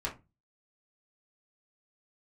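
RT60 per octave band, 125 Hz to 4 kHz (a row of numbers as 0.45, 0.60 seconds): 0.45, 0.35, 0.25, 0.25, 0.20, 0.15 seconds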